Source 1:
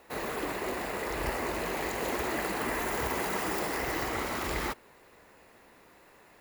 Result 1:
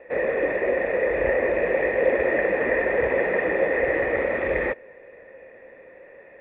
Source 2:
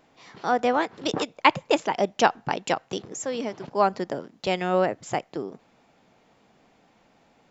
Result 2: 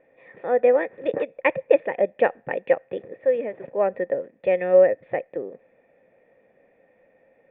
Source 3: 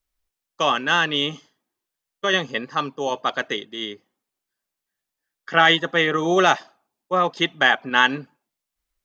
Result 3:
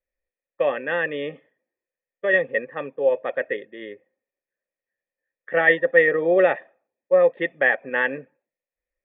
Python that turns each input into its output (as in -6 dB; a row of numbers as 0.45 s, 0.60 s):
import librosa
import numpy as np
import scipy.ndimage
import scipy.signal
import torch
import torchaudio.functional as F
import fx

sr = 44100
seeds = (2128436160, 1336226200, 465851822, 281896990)

y = fx.formant_cascade(x, sr, vowel='e')
y = y * 10.0 ** (-24 / 20.0) / np.sqrt(np.mean(np.square(y)))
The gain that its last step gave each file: +21.5 dB, +12.5 dB, +11.0 dB